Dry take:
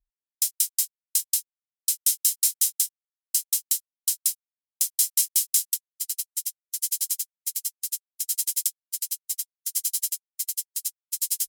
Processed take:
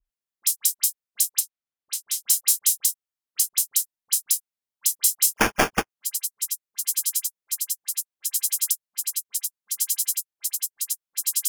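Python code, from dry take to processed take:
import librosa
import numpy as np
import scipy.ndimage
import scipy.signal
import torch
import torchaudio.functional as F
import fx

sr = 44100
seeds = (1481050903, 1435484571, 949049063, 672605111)

y = fx.high_shelf(x, sr, hz=6300.0, db=-10.5, at=(1.35, 2.18))
y = fx.dispersion(y, sr, late='highs', ms=54.0, hz=2100.0)
y = fx.sample_hold(y, sr, seeds[0], rate_hz=4000.0, jitter_pct=0, at=(5.36, 5.89))
y = y * librosa.db_to_amplitude(2.0)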